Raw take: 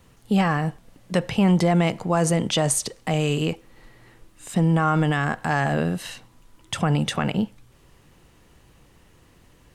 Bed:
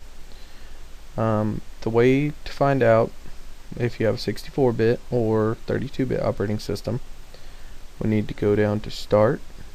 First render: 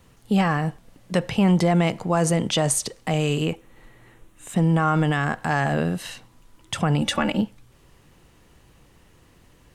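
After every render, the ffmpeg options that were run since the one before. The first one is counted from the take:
-filter_complex "[0:a]asettb=1/sr,asplit=3[s0][s1][s2];[s0]atrim=end=3.444[s3];[s1]atrim=start=3.44:end=4.58,asetpts=PTS-STARTPTS,afade=t=in:d=0.004:c=qsin,afade=t=out:st=1.136:d=0.004:c=qsin,equalizer=f=4800:t=o:w=0.4:g=-9.5[s4];[s2]atrim=start=4.576[s5];[s3][s4]acrossfade=d=0.004:c1=hsin:c2=qsin[s6];[s6][s5]acrossfade=d=0.004:c1=qsin:c2=hsin,asettb=1/sr,asplit=3[s7][s8][s9];[s7]atrim=end=7.014[s10];[s8]atrim=start=7.01:end=7.41,asetpts=PTS-STARTPTS,afade=t=in:d=0.004:c=qsin,afade=t=out:st=0.396:d=0.004:c=qsin,aecho=1:1:3.5:0.91,atrim=end_sample=17640[s11];[s9]atrim=start=7.406[s12];[s10][s11]acrossfade=d=0.004:c1=hsin:c2=qsin[s13];[s13][s12]acrossfade=d=0.004:c1=qsin:c2=hsin"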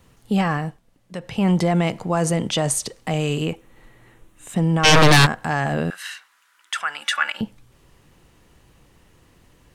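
-filter_complex "[0:a]asplit=3[s0][s1][s2];[s0]afade=t=out:st=4.83:d=0.02[s3];[s1]aeval=exprs='0.376*sin(PI/2*6.31*val(0)/0.376)':c=same,afade=t=in:st=4.83:d=0.02,afade=t=out:st=5.25:d=0.02[s4];[s2]afade=t=in:st=5.25:d=0.02[s5];[s3][s4][s5]amix=inputs=3:normalize=0,asettb=1/sr,asplit=3[s6][s7][s8];[s6]atrim=end=5.904[s9];[s7]atrim=start=5.9:end=7.41,asetpts=PTS-STARTPTS,afade=t=in:d=0.004:c=qsin,afade=t=out:st=1.506:d=0.004:c=qsin,highpass=f=1500:t=q:w=3.1[s10];[s8]atrim=start=7.406[s11];[s9][s10]acrossfade=d=0.004:c1=hsin:c2=qsin[s12];[s12][s11]acrossfade=d=0.004:c1=qsin:c2=hsin,asplit=3[s13][s14][s15];[s13]atrim=end=0.81,asetpts=PTS-STARTPTS,afade=t=out:st=0.55:d=0.26:silence=0.316228[s16];[s14]atrim=start=0.81:end=1.21,asetpts=PTS-STARTPTS,volume=0.316[s17];[s15]atrim=start=1.21,asetpts=PTS-STARTPTS,afade=t=in:d=0.26:silence=0.316228[s18];[s16][s17][s18]concat=n=3:v=0:a=1"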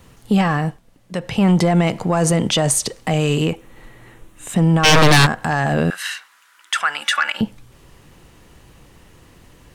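-af "acontrast=85,alimiter=limit=0.398:level=0:latency=1:release=135"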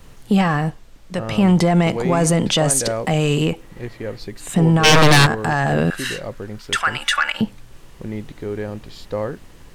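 -filter_complex "[1:a]volume=0.447[s0];[0:a][s0]amix=inputs=2:normalize=0"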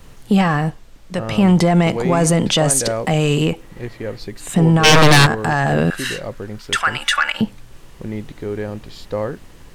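-af "volume=1.19"

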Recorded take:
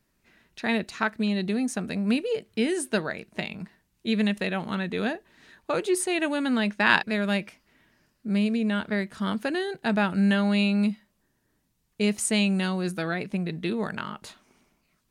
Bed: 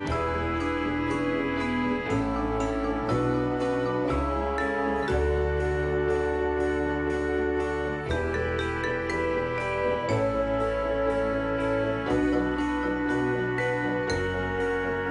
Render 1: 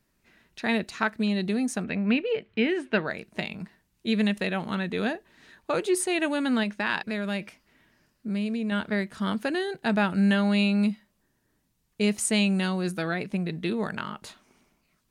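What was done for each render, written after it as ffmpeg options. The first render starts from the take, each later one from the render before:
-filter_complex "[0:a]asettb=1/sr,asplit=3[s0][s1][s2];[s0]atrim=end=1.844[s3];[s1]atrim=start=1.84:end=3.07,asetpts=PTS-STARTPTS,afade=t=in:d=0.004:c=qsin,afade=t=out:st=1.226:d=0.004:c=qsin,lowpass=f=2500:t=q:w=1.7[s4];[s2]atrim=start=3.066[s5];[s3][s4]acrossfade=d=0.004:c1=hsin:c2=qsin[s6];[s6][s5]acrossfade=d=0.004:c1=qsin:c2=hsin,asettb=1/sr,asplit=3[s7][s8][s9];[s7]atrim=end=6.634[s10];[s8]atrim=start=6.63:end=8.72,asetpts=PTS-STARTPTS,afade=t=in:d=0.004:c=qsin,afade=t=out:st=2.086:d=0.004:c=qsin,acompressor=threshold=0.0398:ratio=2:attack=3.2:release=140:knee=1:detection=peak[s11];[s9]atrim=start=8.716[s12];[s10][s11]acrossfade=d=0.004:c1=hsin:c2=qsin[s13];[s13][s12]acrossfade=d=0.004:c1=qsin:c2=hsin"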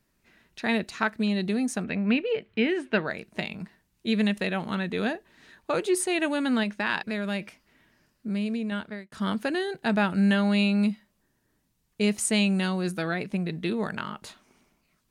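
-filter_complex "[0:a]asplit=2[s0][s1];[s0]atrim=end=9.12,asetpts=PTS-STARTPTS,afade=t=out:st=8.56:d=0.56[s2];[s1]atrim=start=9.12,asetpts=PTS-STARTPTS,afade=t=in:d=0.004:c=hsin[s3];[s2][s3]concat=n=2:v=0:a=1"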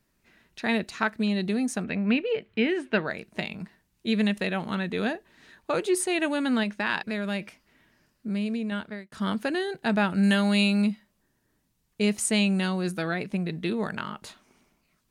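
-filter_complex "[0:a]asettb=1/sr,asplit=3[s0][s1][s2];[s0]atrim=end=10.234[s3];[s1]atrim=start=10.23:end=10.82,asetpts=PTS-STARTPTS,afade=t=in:d=0.004:c=qsin,afade=t=out:st=0.586:d=0.004:c=qsin,highshelf=f=4800:g=11.5[s4];[s2]atrim=start=10.816[s5];[s3][s4]acrossfade=d=0.004:c1=hsin:c2=qsin[s6];[s6][s5]acrossfade=d=0.004:c1=qsin:c2=hsin"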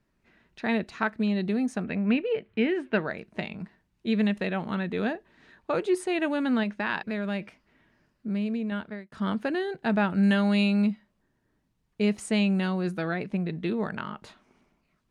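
-af "aemphasis=mode=reproduction:type=75kf"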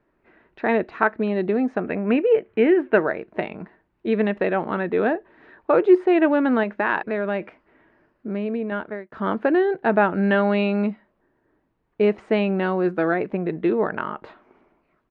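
-filter_complex "[0:a]acrossover=split=5700[s0][s1];[s1]acompressor=threshold=0.00112:ratio=4:attack=1:release=60[s2];[s0][s2]amix=inputs=2:normalize=0,firequalizer=gain_entry='entry(210,0);entry(320,11);entry(1600,7);entry(3200,-3);entry(5800,-14);entry(9400,-21)':delay=0.05:min_phase=1"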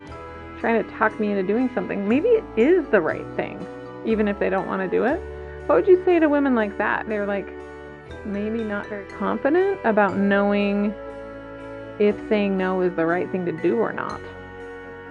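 -filter_complex "[1:a]volume=0.335[s0];[0:a][s0]amix=inputs=2:normalize=0"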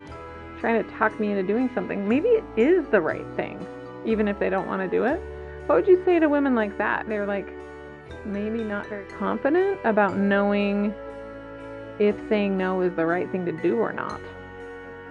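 -af "volume=0.794"

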